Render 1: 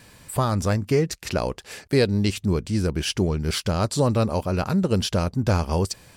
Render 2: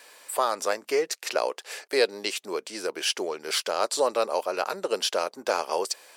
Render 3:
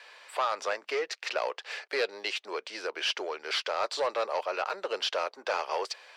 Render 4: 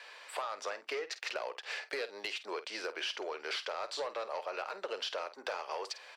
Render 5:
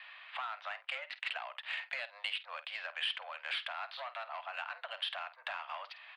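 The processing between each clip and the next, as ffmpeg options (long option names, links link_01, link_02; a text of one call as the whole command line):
ffmpeg -i in.wav -af "highpass=frequency=440:width=0.5412,highpass=frequency=440:width=1.3066,volume=1dB" out.wav
ffmpeg -i in.wav -filter_complex "[0:a]equalizer=frequency=2300:width=0.4:gain=5,asoftclip=type=tanh:threshold=-18dB,acrossover=split=380 5200:gain=0.141 1 0.0794[link_01][link_02][link_03];[link_01][link_02][link_03]amix=inputs=3:normalize=0,volume=-2.5dB" out.wav
ffmpeg -i in.wav -filter_complex "[0:a]acompressor=threshold=-35dB:ratio=6,asoftclip=type=hard:threshold=-27dB,asplit=2[link_01][link_02];[link_02]adelay=50,volume=-13.5dB[link_03];[link_01][link_03]amix=inputs=2:normalize=0" out.wav
ffmpeg -i in.wav -af "highpass=frequency=520:width_type=q:width=0.5412,highpass=frequency=520:width_type=q:width=1.307,lowpass=frequency=3500:width_type=q:width=0.5176,lowpass=frequency=3500:width_type=q:width=0.7071,lowpass=frequency=3500:width_type=q:width=1.932,afreqshift=110,aderivative,adynamicsmooth=sensitivity=5:basefreq=2800,volume=15dB" out.wav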